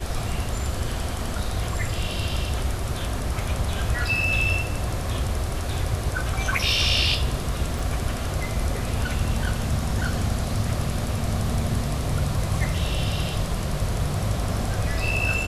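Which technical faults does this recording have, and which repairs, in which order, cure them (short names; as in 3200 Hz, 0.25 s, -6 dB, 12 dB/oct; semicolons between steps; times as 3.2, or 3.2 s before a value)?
7.79 gap 4.1 ms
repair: interpolate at 7.79, 4.1 ms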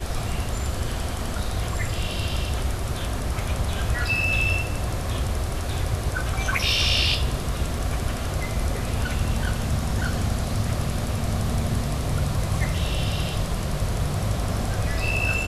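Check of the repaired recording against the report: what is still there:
none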